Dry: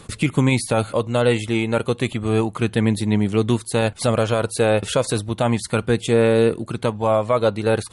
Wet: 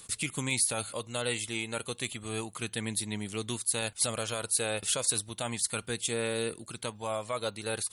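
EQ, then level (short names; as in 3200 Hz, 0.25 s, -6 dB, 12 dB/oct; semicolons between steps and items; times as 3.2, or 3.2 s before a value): pre-emphasis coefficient 0.9; +1.5 dB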